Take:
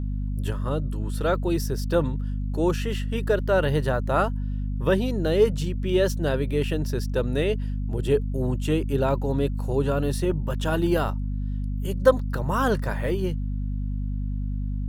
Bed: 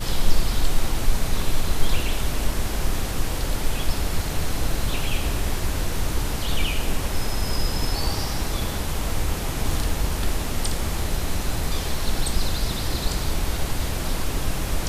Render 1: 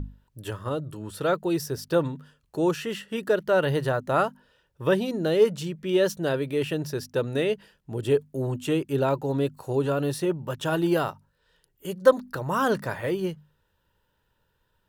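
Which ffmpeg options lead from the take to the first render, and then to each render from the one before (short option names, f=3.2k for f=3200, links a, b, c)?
-af "bandreject=f=50:t=h:w=6,bandreject=f=100:t=h:w=6,bandreject=f=150:t=h:w=6,bandreject=f=200:t=h:w=6,bandreject=f=250:t=h:w=6"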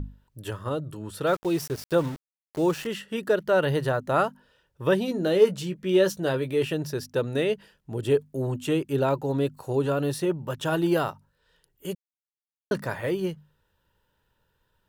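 -filter_complex "[0:a]asettb=1/sr,asplit=3[a][b][c];[a]atrim=end=1.274[d];[b]atrim=start=1.27:end=2.87,asetpts=PTS-STARTPTS,afade=t=in:d=0.004:c=qsin,afade=t=out:st=1.596:d=0.004:c=qsin,aeval=exprs='val(0)*gte(abs(val(0)),0.015)':c=same[e];[c]atrim=start=2.866[f];[d][e]acrossfade=d=0.004:c1=hsin:c2=qsin[g];[g][f]acrossfade=d=0.004:c1=qsin:c2=hsin,asettb=1/sr,asplit=3[h][i][j];[h]atrim=end=5.064[k];[i]atrim=start=5.06:end=6.72,asetpts=PTS-STARTPTS,afade=t=in:d=0.004:c=qsin,afade=t=out:st=1.656:d=0.004:c=qsin,asplit=2[l][m];[m]adelay=16,volume=-9dB[n];[l][n]amix=inputs=2:normalize=0,atrim=end_sample=73206[o];[j]atrim=start=6.716[p];[k][o]acrossfade=d=0.004:c1=hsin:c2=qsin[q];[q][p]acrossfade=d=0.004:c1=qsin:c2=hsin,asplit=3[r][s][t];[r]atrim=end=11.95,asetpts=PTS-STARTPTS,afade=t=out:st=11.946:d=0.004:c=hsin[u];[s]atrim=start=11.95:end=12.71,asetpts=PTS-STARTPTS,volume=0[v];[t]atrim=start=12.71,asetpts=PTS-STARTPTS,afade=t=in:d=0.004:c=hsin[w];[u][v][w]concat=n=3:v=0:a=1"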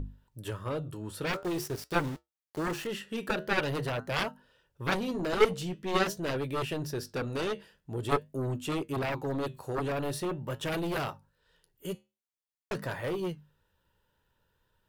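-af "flanger=delay=7.2:depth=5:regen=-74:speed=0.46:shape=sinusoidal,aeval=exprs='0.266*(cos(1*acos(clip(val(0)/0.266,-1,1)))-cos(1*PI/2))+0.0422*(cos(3*acos(clip(val(0)/0.266,-1,1)))-cos(3*PI/2))+0.0299*(cos(4*acos(clip(val(0)/0.266,-1,1)))-cos(4*PI/2))+0.0668*(cos(7*acos(clip(val(0)/0.266,-1,1)))-cos(7*PI/2))':c=same"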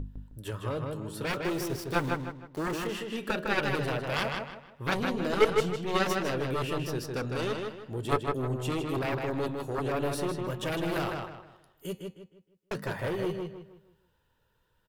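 -filter_complex "[0:a]asplit=2[a][b];[b]adelay=156,lowpass=f=4.1k:p=1,volume=-3.5dB,asplit=2[c][d];[d]adelay=156,lowpass=f=4.1k:p=1,volume=0.35,asplit=2[e][f];[f]adelay=156,lowpass=f=4.1k:p=1,volume=0.35,asplit=2[g][h];[h]adelay=156,lowpass=f=4.1k:p=1,volume=0.35,asplit=2[i][j];[j]adelay=156,lowpass=f=4.1k:p=1,volume=0.35[k];[a][c][e][g][i][k]amix=inputs=6:normalize=0"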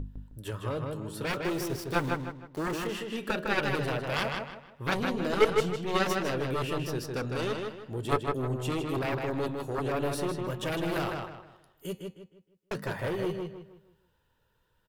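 -af anull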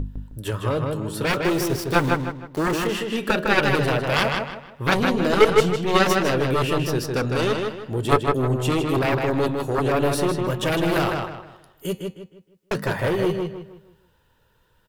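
-af "volume=9.5dB,alimiter=limit=-3dB:level=0:latency=1"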